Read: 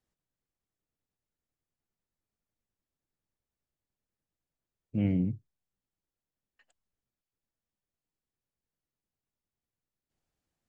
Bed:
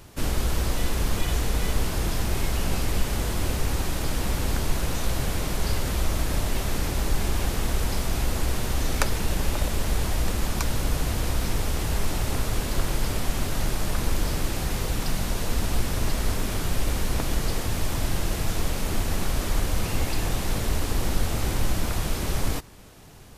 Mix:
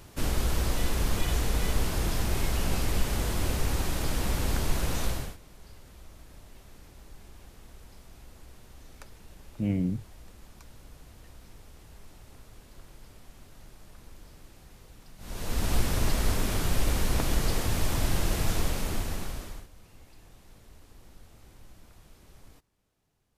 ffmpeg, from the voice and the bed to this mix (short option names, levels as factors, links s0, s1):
-filter_complex "[0:a]adelay=4650,volume=1[s0];[1:a]volume=11.9,afade=t=out:st=5.04:d=0.33:silence=0.0749894,afade=t=in:st=15.18:d=0.55:silence=0.0630957,afade=t=out:st=18.52:d=1.16:silence=0.0446684[s1];[s0][s1]amix=inputs=2:normalize=0"